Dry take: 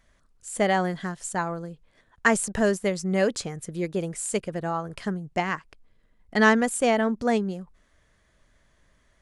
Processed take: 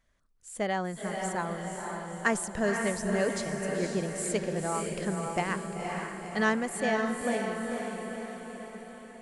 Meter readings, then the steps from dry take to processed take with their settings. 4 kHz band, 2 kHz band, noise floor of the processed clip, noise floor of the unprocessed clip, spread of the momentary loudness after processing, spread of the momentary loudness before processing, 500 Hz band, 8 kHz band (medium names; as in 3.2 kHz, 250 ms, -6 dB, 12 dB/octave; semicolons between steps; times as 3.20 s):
-5.0 dB, -5.0 dB, -50 dBFS, -65 dBFS, 10 LU, 12 LU, -4.5 dB, -4.0 dB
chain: gain riding 2 s; echo that smears into a reverb 507 ms, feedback 57%, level -3.5 dB; trim -8 dB